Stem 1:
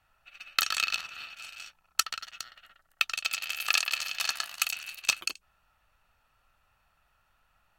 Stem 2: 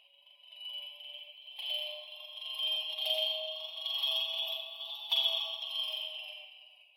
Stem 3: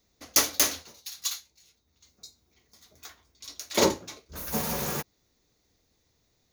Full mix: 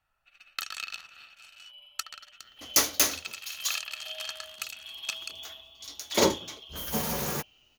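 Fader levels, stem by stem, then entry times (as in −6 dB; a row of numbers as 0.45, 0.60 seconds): −8.5, −9.0, −0.5 decibels; 0.00, 1.00, 2.40 seconds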